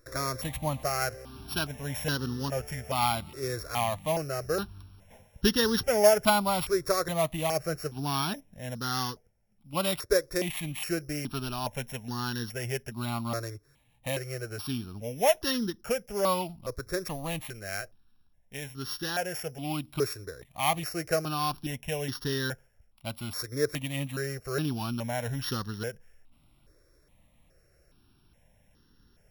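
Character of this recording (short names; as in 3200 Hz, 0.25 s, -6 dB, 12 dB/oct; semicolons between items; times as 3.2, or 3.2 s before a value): a buzz of ramps at a fixed pitch in blocks of 8 samples; notches that jump at a steady rate 2.4 Hz 810–2300 Hz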